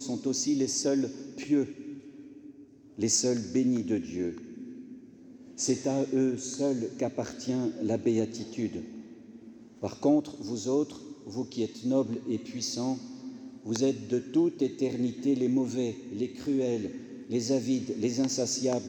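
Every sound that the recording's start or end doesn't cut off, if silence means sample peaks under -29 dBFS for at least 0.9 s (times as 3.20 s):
3.01–4.30 s
5.60–8.79 s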